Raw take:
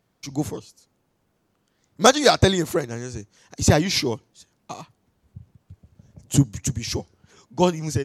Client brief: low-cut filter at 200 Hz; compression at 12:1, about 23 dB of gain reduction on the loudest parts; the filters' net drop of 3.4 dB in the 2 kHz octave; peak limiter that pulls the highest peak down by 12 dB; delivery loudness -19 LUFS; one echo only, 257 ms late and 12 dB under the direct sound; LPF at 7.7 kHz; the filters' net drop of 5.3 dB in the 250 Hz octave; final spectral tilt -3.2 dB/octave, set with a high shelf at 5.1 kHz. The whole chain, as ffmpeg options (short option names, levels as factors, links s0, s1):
-af "highpass=200,lowpass=7700,equalizer=f=250:t=o:g=-5,equalizer=f=2000:t=o:g=-5.5,highshelf=f=5100:g=6.5,acompressor=threshold=0.0224:ratio=12,alimiter=level_in=2:limit=0.0631:level=0:latency=1,volume=0.501,aecho=1:1:257:0.251,volume=15"